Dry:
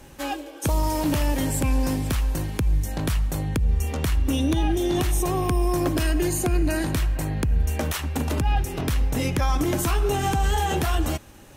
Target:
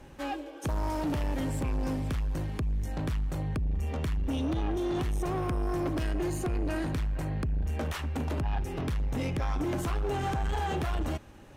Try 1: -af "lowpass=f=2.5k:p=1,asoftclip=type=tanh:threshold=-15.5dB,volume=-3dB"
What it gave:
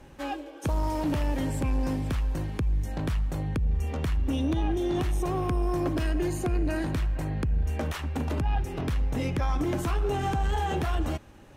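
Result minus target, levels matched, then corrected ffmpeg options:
soft clip: distortion -10 dB
-af "lowpass=f=2.5k:p=1,asoftclip=type=tanh:threshold=-23dB,volume=-3dB"

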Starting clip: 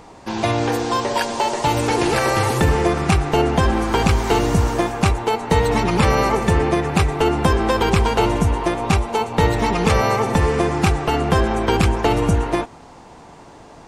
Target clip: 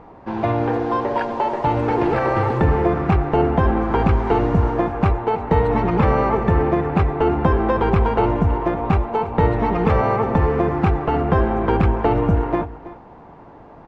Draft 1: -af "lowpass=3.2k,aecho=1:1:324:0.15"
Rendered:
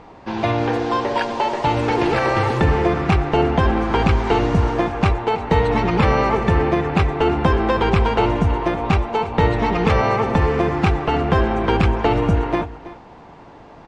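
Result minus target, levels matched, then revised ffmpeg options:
4000 Hz band +10.0 dB
-af "lowpass=1.5k,aecho=1:1:324:0.15"

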